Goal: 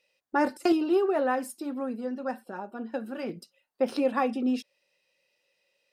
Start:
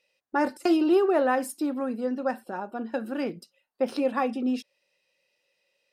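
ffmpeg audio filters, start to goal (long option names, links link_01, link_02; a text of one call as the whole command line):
ffmpeg -i in.wav -filter_complex "[0:a]asettb=1/sr,asplit=3[link_01][link_02][link_03];[link_01]atrim=end=0.724[link_04];[link_02]atrim=start=0.72:end=3.29,asetpts=PTS-STARTPTS,afade=type=in:duration=0.004:curve=qsin,afade=type=out:start_time=2.566:duration=0.004:curve=qsin,flanger=delay=3.9:depth=1.4:regen=-44:speed=1.8:shape=sinusoidal[link_05];[link_03]atrim=start=3.286[link_06];[link_04][link_05]acrossfade=duration=0.004:curve1=hsin:curve2=qsin[link_07];[link_07][link_06]acrossfade=duration=0.004:curve1=qsin:curve2=hsin" out.wav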